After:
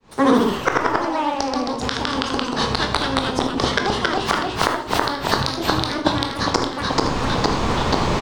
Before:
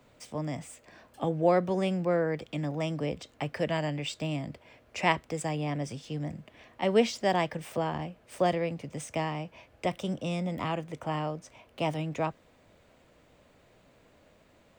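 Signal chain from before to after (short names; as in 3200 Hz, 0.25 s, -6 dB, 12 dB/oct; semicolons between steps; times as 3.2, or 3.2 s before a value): opening faded in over 2.02 s; in parallel at -12 dB: decimation with a swept rate 28×, swing 100% 2.8 Hz; on the sum: flipped gate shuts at -29 dBFS, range -33 dB; running mean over 6 samples; on a send: echo 0.134 s -12 dB; on the sum: Schroeder reverb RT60 0.73 s, combs from 27 ms, DRR 6 dB; echoes that change speed 86 ms, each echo -1 st, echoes 3; vocal rider within 4 dB 0.5 s; wide varispeed 1.8×; low shelf 160 Hz +7 dB; maximiser +32 dB; gain -1 dB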